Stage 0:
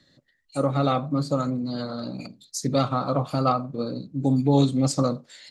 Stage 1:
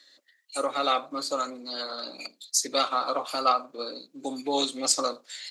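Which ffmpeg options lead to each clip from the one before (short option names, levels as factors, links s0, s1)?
-af "highpass=f=310:w=0.5412,highpass=f=310:w=1.3066,tiltshelf=f=970:g=-8"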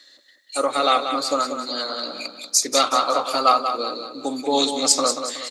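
-af "aecho=1:1:186|372|558|744|930:0.398|0.163|0.0669|0.0274|0.0112,volume=2.11"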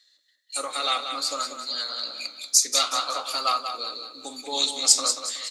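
-af "agate=range=0.316:threshold=0.00501:ratio=16:detection=peak,tiltshelf=f=1300:g=-8.5,flanger=delay=8.8:depth=7.7:regen=76:speed=0.56:shape=sinusoidal,volume=0.708"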